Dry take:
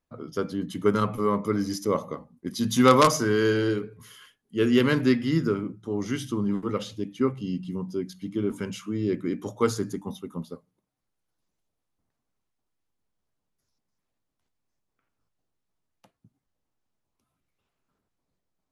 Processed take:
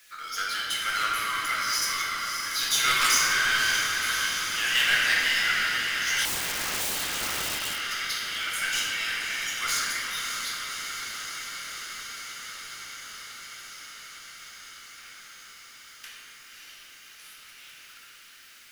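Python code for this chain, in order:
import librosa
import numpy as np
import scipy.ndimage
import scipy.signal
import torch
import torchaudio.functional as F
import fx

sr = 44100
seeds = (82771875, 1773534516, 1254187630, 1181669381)

y = scipy.signal.sosfilt(scipy.signal.butter(8, 1500.0, 'highpass', fs=sr, output='sos'), x)
y = fx.level_steps(y, sr, step_db=11)
y = fx.echo_diffused(y, sr, ms=589, feedback_pct=66, wet_db=-13)
y = fx.power_curve(y, sr, exponent=0.5)
y = fx.room_shoebox(y, sr, seeds[0], volume_m3=140.0, walls='hard', distance_m=0.79)
y = fx.overflow_wrap(y, sr, gain_db=24.0, at=(6.25, 7.81))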